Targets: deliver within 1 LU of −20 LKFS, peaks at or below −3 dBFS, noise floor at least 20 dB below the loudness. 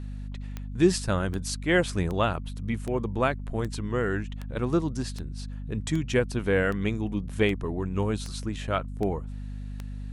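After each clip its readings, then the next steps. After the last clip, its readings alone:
number of clicks 13; mains hum 50 Hz; hum harmonics up to 250 Hz; level of the hum −33 dBFS; integrated loudness −28.5 LKFS; sample peak −8.5 dBFS; target loudness −20.0 LKFS
→ click removal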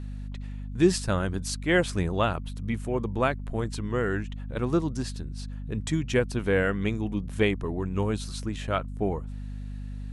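number of clicks 0; mains hum 50 Hz; hum harmonics up to 250 Hz; level of the hum −33 dBFS
→ hum removal 50 Hz, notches 5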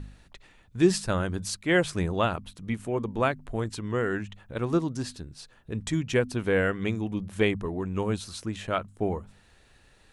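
mains hum none found; integrated loudness −28.5 LKFS; sample peak −8.5 dBFS; target loudness −20.0 LKFS
→ level +8.5 dB
brickwall limiter −3 dBFS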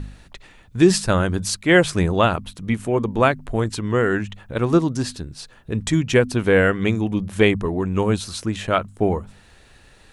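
integrated loudness −20.5 LKFS; sample peak −3.0 dBFS; background noise floor −51 dBFS

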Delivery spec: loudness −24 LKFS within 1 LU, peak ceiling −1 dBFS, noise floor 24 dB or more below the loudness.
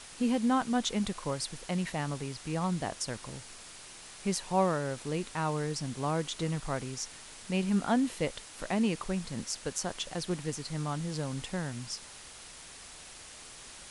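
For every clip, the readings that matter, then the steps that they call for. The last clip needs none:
background noise floor −49 dBFS; target noise floor −57 dBFS; integrated loudness −33.0 LKFS; sample peak −15.5 dBFS; target loudness −24.0 LKFS
→ broadband denoise 8 dB, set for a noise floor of −49 dBFS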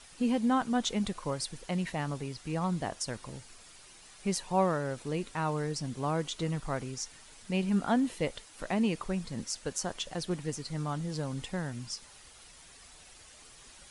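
background noise floor −54 dBFS; target noise floor −57 dBFS
→ broadband denoise 6 dB, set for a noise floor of −54 dBFS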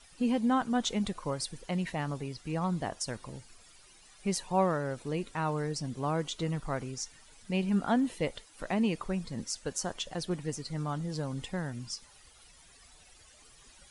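background noise floor −58 dBFS; integrated loudness −33.5 LKFS; sample peak −15.5 dBFS; target loudness −24.0 LKFS
→ level +9.5 dB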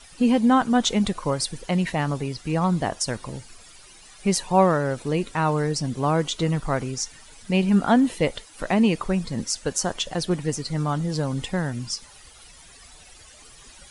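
integrated loudness −24.0 LKFS; sample peak −6.0 dBFS; background noise floor −49 dBFS

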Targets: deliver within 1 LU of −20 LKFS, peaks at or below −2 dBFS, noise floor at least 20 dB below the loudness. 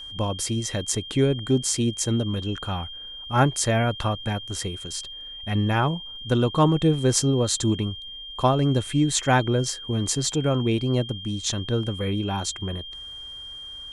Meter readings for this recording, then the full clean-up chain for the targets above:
crackle rate 20 per second; interfering tone 3,200 Hz; level of the tone −36 dBFS; integrated loudness −24.0 LKFS; sample peak −6.5 dBFS; target loudness −20.0 LKFS
→ click removal
notch filter 3,200 Hz, Q 30
level +4 dB

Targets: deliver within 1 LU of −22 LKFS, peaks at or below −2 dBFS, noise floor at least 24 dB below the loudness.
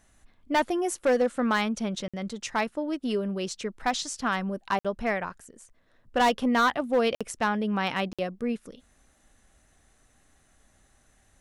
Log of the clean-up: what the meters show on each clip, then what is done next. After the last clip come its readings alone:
share of clipped samples 0.5%; peaks flattened at −17.0 dBFS; number of dropouts 4; longest dropout 56 ms; integrated loudness −28.0 LKFS; sample peak −17.0 dBFS; target loudness −22.0 LKFS
→ clipped peaks rebuilt −17 dBFS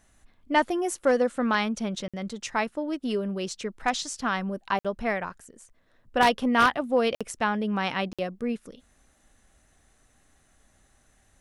share of clipped samples 0.0%; number of dropouts 4; longest dropout 56 ms
→ repair the gap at 0:02.08/0:04.79/0:07.15/0:08.13, 56 ms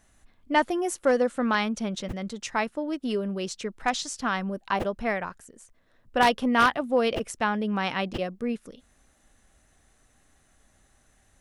number of dropouts 0; integrated loudness −27.0 LKFS; sample peak −8.0 dBFS; target loudness −22.0 LKFS
→ level +5 dB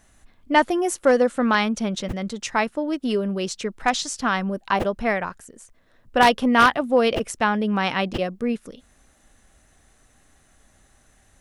integrated loudness −22.0 LKFS; sample peak −3.0 dBFS; background noise floor −59 dBFS

